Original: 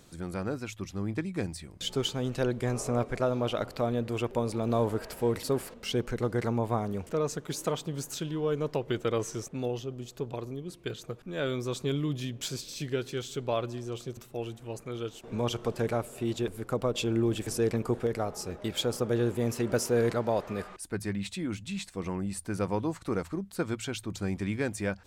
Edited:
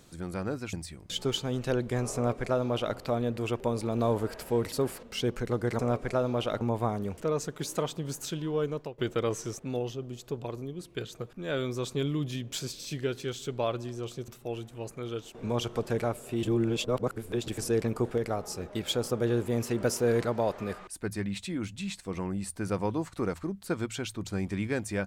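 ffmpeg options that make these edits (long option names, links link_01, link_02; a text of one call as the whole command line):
ffmpeg -i in.wav -filter_complex "[0:a]asplit=7[link_01][link_02][link_03][link_04][link_05][link_06][link_07];[link_01]atrim=end=0.732[link_08];[link_02]atrim=start=1.438:end=6.502[link_09];[link_03]atrim=start=2.858:end=3.682[link_10];[link_04]atrim=start=6.498:end=8.87,asetpts=PTS-STARTPTS,afade=type=out:start_time=2.012:duration=0.36:silence=0.149624[link_11];[link_05]atrim=start=8.87:end=16.322,asetpts=PTS-STARTPTS,afade=type=in:duration=0.004:curve=hsin:silence=0.149624[link_12];[link_06]atrim=start=16.318:end=17.372,asetpts=PTS-STARTPTS,areverse[link_13];[link_07]atrim=start=17.368[link_14];[link_08][link_09]acrossfade=duration=0.004:curve1=hsin:curve2=hsin[link_15];[link_15][link_10]acrossfade=duration=0.004:curve1=hsin:curve2=hsin[link_16];[link_11][link_12]concat=n=2:v=0:a=1[link_17];[link_16][link_17]acrossfade=duration=0.004:curve1=hsin:curve2=hsin[link_18];[link_18][link_13]acrossfade=duration=0.004:curve1=hsin:curve2=hsin[link_19];[link_19][link_14]acrossfade=duration=0.004:curve1=hsin:curve2=hsin" out.wav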